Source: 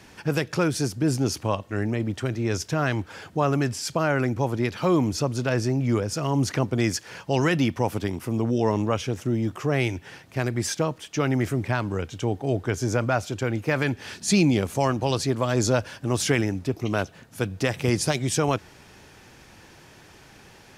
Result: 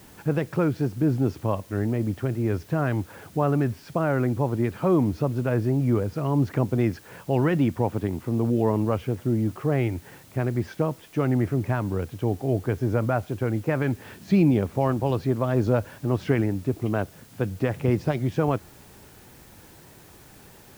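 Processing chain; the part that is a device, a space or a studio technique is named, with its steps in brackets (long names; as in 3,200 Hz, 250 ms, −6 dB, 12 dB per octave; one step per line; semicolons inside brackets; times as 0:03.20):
cassette deck with a dirty head (head-to-tape spacing loss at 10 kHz 44 dB; tape wow and flutter; white noise bed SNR 29 dB)
level +2 dB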